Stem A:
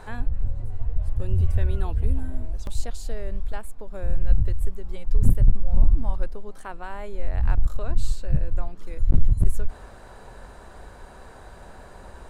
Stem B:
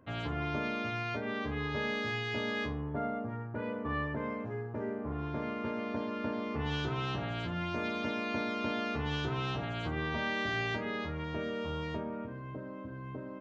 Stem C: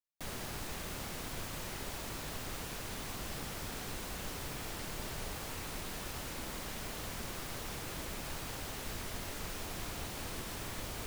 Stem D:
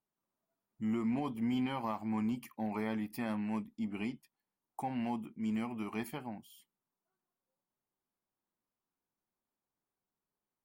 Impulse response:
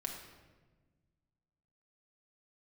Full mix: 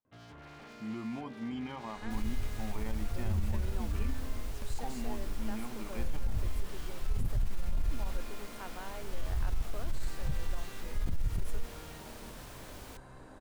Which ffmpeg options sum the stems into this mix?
-filter_complex "[0:a]adelay=1950,volume=-9dB[link_01];[1:a]aeval=exprs='0.0251*(abs(mod(val(0)/0.0251+3,4)-2)-1)':channel_layout=same,adelay=50,volume=-13.5dB[link_02];[2:a]adelay=1900,volume=-8dB[link_03];[3:a]lowpass=7500,volume=-5.5dB[link_04];[link_01][link_02][link_03][link_04]amix=inputs=4:normalize=0,alimiter=limit=-23dB:level=0:latency=1:release=30"

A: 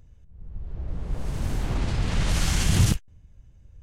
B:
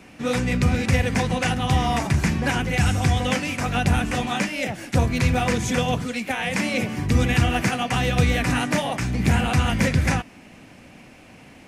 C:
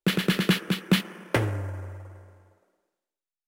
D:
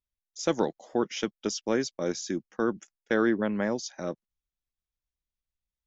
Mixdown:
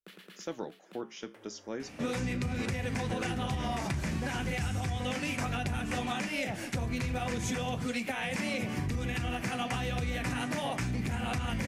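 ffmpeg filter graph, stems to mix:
ffmpeg -i stem1.wav -i stem2.wav -i stem3.wav -i stem4.wav -filter_complex "[0:a]adelay=1750,volume=-14dB[link_01];[1:a]alimiter=limit=-16.5dB:level=0:latency=1:release=140,adelay=1800,volume=2dB[link_02];[2:a]alimiter=limit=-22dB:level=0:latency=1:release=219,volume=-10dB[link_03];[3:a]volume=-7dB,asplit=2[link_04][link_05];[link_05]apad=whole_len=153143[link_06];[link_03][link_06]sidechaincompress=threshold=-40dB:ratio=8:attack=16:release=497[link_07];[link_01][link_07]amix=inputs=2:normalize=0,highpass=260,acompressor=threshold=-55dB:ratio=2,volume=0dB[link_08];[link_02][link_04]amix=inputs=2:normalize=0,flanger=delay=7.1:depth=9.3:regen=-71:speed=0.37:shape=sinusoidal,acompressor=threshold=-30dB:ratio=4,volume=0dB[link_09];[link_08][link_09]amix=inputs=2:normalize=0" out.wav

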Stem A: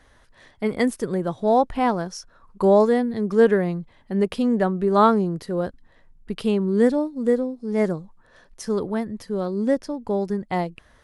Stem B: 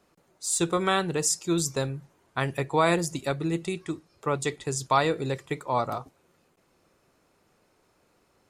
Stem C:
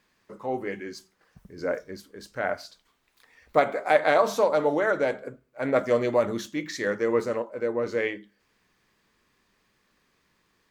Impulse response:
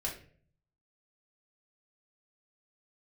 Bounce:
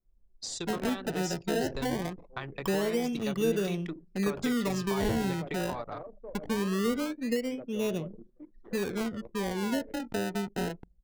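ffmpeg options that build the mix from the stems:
-filter_complex "[0:a]deesser=0.85,lowshelf=frequency=310:gain=3,acrusher=samples=27:mix=1:aa=0.000001:lfo=1:lforange=27:lforate=0.22,adelay=50,volume=-7dB,asplit=2[link_01][link_02];[link_02]volume=-16dB[link_03];[1:a]lowpass=frequency=5400:width=0.5412,lowpass=frequency=5400:width=1.3066,highshelf=frequency=2100:gain=7,acompressor=threshold=-35dB:ratio=5,volume=-2dB,asplit=2[link_04][link_05];[link_05]volume=-11.5dB[link_06];[2:a]acrossover=split=480[link_07][link_08];[link_08]acompressor=threshold=-44dB:ratio=2[link_09];[link_07][link_09]amix=inputs=2:normalize=0,adelay=1850,volume=-16dB,asplit=2[link_10][link_11];[link_11]volume=-13.5dB[link_12];[link_01][link_10]amix=inputs=2:normalize=0,acompressor=threshold=-29dB:ratio=2.5,volume=0dB[link_13];[3:a]atrim=start_sample=2205[link_14];[link_03][link_06]amix=inputs=2:normalize=0[link_15];[link_15][link_14]afir=irnorm=-1:irlink=0[link_16];[link_12]aecho=0:1:367|734|1101|1468:1|0.29|0.0841|0.0244[link_17];[link_04][link_13][link_16][link_17]amix=inputs=4:normalize=0,anlmdn=0.398,acrossover=split=460[link_18][link_19];[link_19]acompressor=threshold=-32dB:ratio=6[link_20];[link_18][link_20]amix=inputs=2:normalize=0"

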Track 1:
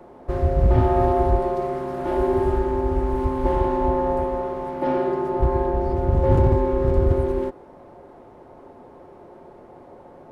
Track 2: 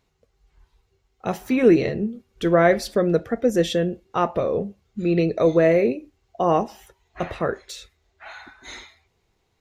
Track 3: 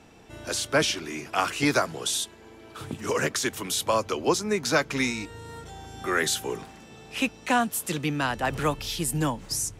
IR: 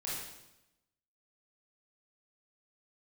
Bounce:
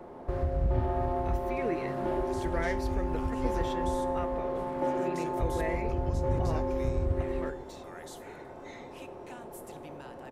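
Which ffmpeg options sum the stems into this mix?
-filter_complex "[0:a]highshelf=frequency=6600:gain=-7,acompressor=threshold=-30dB:ratio=2.5,volume=-2.5dB,asplit=2[link_01][link_02];[link_02]volume=-8dB[link_03];[1:a]equalizer=frequency=2000:width_type=o:width=0.77:gain=10,volume=-19.5dB[link_04];[2:a]acompressor=threshold=-49dB:ratio=1.5,adelay=1800,volume=-16.5dB,asplit=2[link_05][link_06];[link_06]volume=-15dB[link_07];[3:a]atrim=start_sample=2205[link_08];[link_03][link_07]amix=inputs=2:normalize=0[link_09];[link_09][link_08]afir=irnorm=-1:irlink=0[link_10];[link_01][link_04][link_05][link_10]amix=inputs=4:normalize=0,highshelf=frequency=8700:gain=5.5"

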